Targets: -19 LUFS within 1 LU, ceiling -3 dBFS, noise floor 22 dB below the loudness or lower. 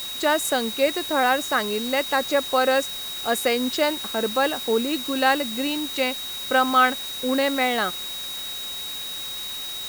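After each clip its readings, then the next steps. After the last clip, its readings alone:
steady tone 3.8 kHz; tone level -31 dBFS; noise floor -32 dBFS; noise floor target -45 dBFS; loudness -23.0 LUFS; peak level -6.0 dBFS; loudness target -19.0 LUFS
-> band-stop 3.8 kHz, Q 30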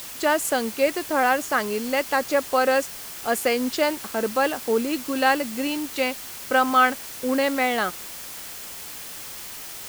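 steady tone not found; noise floor -37 dBFS; noise floor target -45 dBFS
-> noise reduction 8 dB, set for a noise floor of -37 dBFS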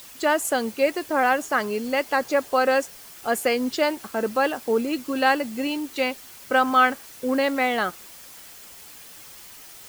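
noise floor -45 dBFS; noise floor target -46 dBFS
-> noise reduction 6 dB, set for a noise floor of -45 dBFS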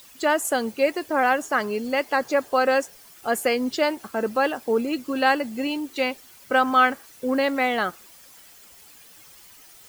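noise floor -49 dBFS; loudness -23.5 LUFS; peak level -6.0 dBFS; loudness target -19.0 LUFS
-> trim +4.5 dB; peak limiter -3 dBFS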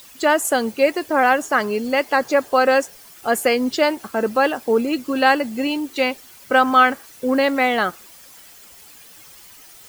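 loudness -19.0 LUFS; peak level -3.0 dBFS; noise floor -45 dBFS

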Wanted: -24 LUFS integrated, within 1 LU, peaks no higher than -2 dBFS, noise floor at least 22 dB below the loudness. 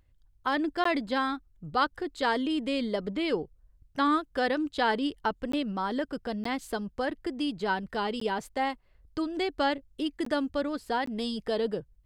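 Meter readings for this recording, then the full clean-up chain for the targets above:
dropouts 6; longest dropout 14 ms; loudness -30.5 LUFS; peak level -12.5 dBFS; loudness target -24.0 LUFS
-> interpolate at 0.84/5.52/6.44/8.20/10.25/11.06 s, 14 ms; trim +6.5 dB

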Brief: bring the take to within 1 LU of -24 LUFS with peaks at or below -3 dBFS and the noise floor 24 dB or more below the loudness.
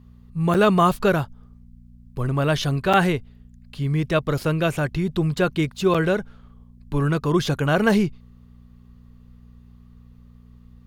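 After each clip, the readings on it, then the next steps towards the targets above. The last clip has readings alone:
dropouts 3; longest dropout 6.0 ms; hum 60 Hz; highest harmonic 240 Hz; hum level -45 dBFS; loudness -21.5 LUFS; peak level -5.5 dBFS; loudness target -24.0 LUFS
-> interpolate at 0.54/2.93/5.94 s, 6 ms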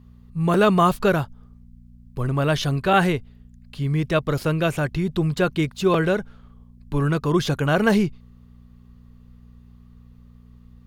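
dropouts 0; hum 60 Hz; highest harmonic 240 Hz; hum level -45 dBFS
-> de-hum 60 Hz, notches 4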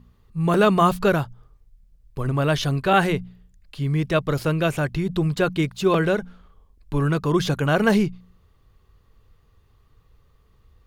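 hum not found; loudness -22.0 LUFS; peak level -5.5 dBFS; loudness target -24.0 LUFS
-> trim -2 dB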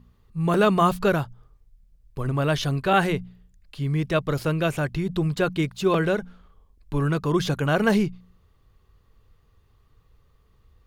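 loudness -24.0 LUFS; peak level -7.5 dBFS; noise floor -61 dBFS

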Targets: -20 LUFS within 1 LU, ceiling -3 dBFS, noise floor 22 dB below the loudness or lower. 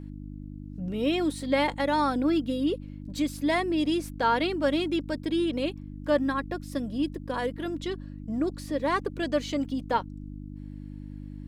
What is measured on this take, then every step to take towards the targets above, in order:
hum 50 Hz; highest harmonic 300 Hz; hum level -37 dBFS; loudness -28.5 LUFS; peak level -12.0 dBFS; loudness target -20.0 LUFS
-> de-hum 50 Hz, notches 6; trim +8.5 dB

